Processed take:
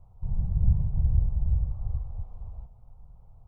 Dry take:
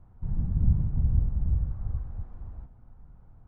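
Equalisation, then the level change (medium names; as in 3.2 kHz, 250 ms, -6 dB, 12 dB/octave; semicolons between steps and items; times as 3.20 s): static phaser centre 690 Hz, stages 4; +1.5 dB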